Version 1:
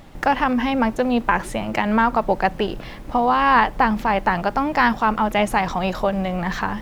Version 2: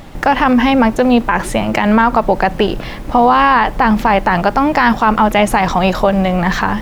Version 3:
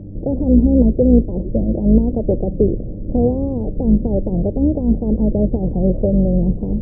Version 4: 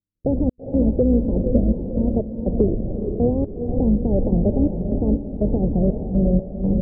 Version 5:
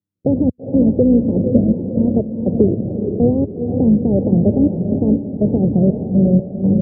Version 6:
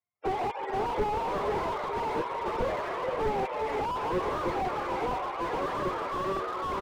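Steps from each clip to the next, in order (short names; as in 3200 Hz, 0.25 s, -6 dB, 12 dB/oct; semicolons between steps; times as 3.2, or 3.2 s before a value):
maximiser +10.5 dB; gain -1 dB
octaver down 2 oct, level -2 dB; steep low-pass 550 Hz 48 dB/oct; buzz 100 Hz, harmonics 3, -34 dBFS; gain -1 dB
compressor 4:1, threshold -14 dBFS, peak gain reduction 7 dB; step gate ".x.xxxx.x.xx" 61 bpm -60 dB; on a send: diffused feedback echo 0.453 s, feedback 42%, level -6 dB
HPF 95 Hz 24 dB/oct; tilt shelf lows +6 dB, about 840 Hz; gain +1 dB
spectrum mirrored in octaves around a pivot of 460 Hz; frequency-shifting echo 0.151 s, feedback 60%, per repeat +82 Hz, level -12 dB; slew limiter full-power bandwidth 55 Hz; gain -5.5 dB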